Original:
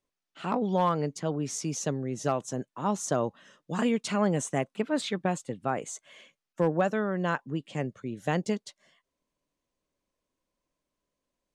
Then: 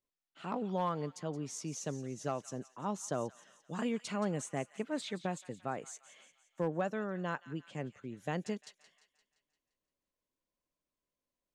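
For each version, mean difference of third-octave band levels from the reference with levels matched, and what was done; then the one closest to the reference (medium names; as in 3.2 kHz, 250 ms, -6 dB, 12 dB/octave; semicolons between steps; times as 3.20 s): 2.5 dB: feedback echo behind a high-pass 173 ms, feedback 53%, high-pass 1.6 kHz, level -13.5 dB; trim -8.5 dB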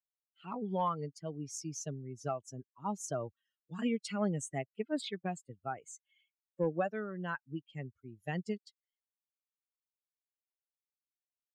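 8.0 dB: expander on every frequency bin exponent 2; trim -4 dB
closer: first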